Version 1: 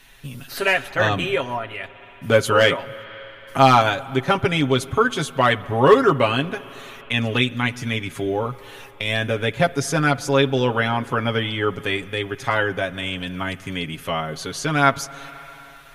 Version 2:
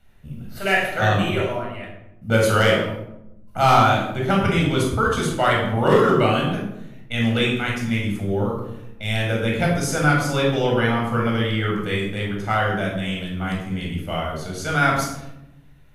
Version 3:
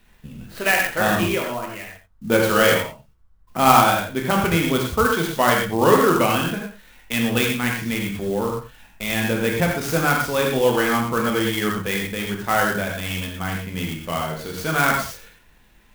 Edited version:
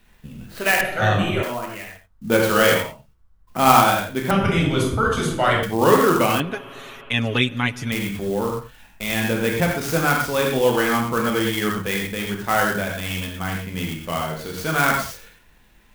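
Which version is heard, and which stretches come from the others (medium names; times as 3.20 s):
3
0.81–1.43 s: from 2
4.31–5.63 s: from 2
6.40–7.92 s: from 1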